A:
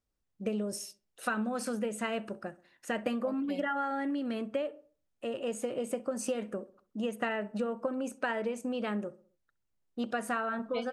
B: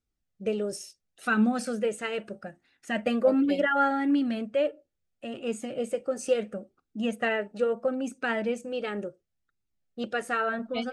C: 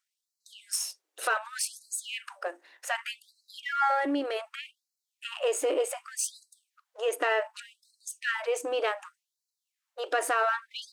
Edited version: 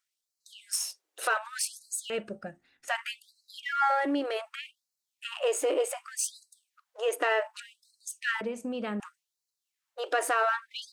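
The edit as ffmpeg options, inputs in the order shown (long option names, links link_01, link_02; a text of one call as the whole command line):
ffmpeg -i take0.wav -i take1.wav -i take2.wav -filter_complex "[2:a]asplit=3[link_01][link_02][link_03];[link_01]atrim=end=2.102[link_04];[1:a]atrim=start=2.098:end=2.882[link_05];[link_02]atrim=start=2.878:end=8.412[link_06];[0:a]atrim=start=8.408:end=9.002[link_07];[link_03]atrim=start=8.998[link_08];[link_04][link_05]acrossfade=duration=0.004:curve1=hsin:curve2=hsin[link_09];[link_09][link_06]acrossfade=duration=0.004:curve1=hsin:curve2=hsin[link_10];[link_10][link_07]acrossfade=duration=0.004:curve1=hsin:curve2=hsin[link_11];[link_11][link_08]acrossfade=duration=0.004:curve1=hsin:curve2=hsin" out.wav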